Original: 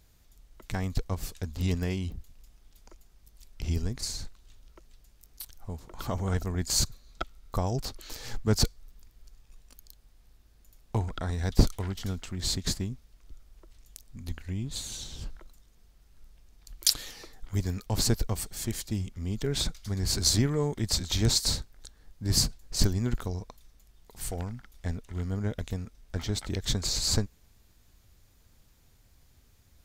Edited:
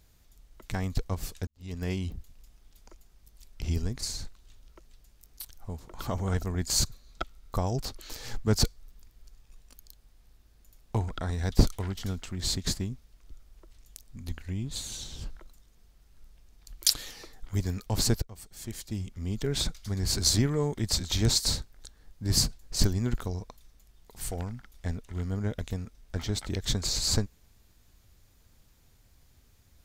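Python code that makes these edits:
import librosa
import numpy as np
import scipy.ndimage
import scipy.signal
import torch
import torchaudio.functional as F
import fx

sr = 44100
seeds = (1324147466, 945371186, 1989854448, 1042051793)

y = fx.edit(x, sr, fx.fade_in_span(start_s=1.47, length_s=0.43, curve='qua'),
    fx.fade_in_from(start_s=18.22, length_s=1.06, floor_db=-22.5), tone=tone)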